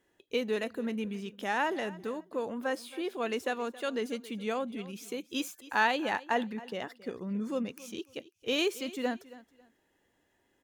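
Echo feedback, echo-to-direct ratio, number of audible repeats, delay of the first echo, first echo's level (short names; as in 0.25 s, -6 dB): 25%, -18.0 dB, 2, 0.273 s, -18.5 dB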